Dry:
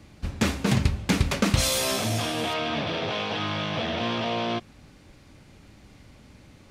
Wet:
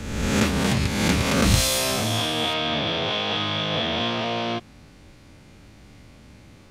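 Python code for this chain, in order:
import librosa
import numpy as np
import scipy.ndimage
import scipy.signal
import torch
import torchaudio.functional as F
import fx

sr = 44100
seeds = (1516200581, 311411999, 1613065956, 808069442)

y = fx.spec_swells(x, sr, rise_s=1.25)
y = fx.highpass(y, sr, hz=160.0, slope=6, at=(0.59, 1.45))
y = fx.peak_eq(y, sr, hz=3400.0, db=7.0, octaves=0.2, at=(2.06, 4.1))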